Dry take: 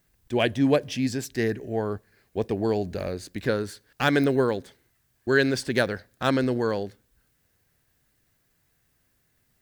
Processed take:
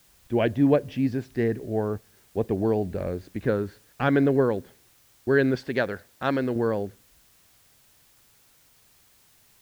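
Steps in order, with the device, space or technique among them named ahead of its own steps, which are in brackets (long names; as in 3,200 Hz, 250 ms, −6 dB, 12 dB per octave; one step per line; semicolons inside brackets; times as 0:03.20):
0:05.55–0:06.56: spectral tilt +2 dB per octave
cassette deck with a dirty head (head-to-tape spacing loss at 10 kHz 37 dB; tape wow and flutter; white noise bed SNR 33 dB)
level +2.5 dB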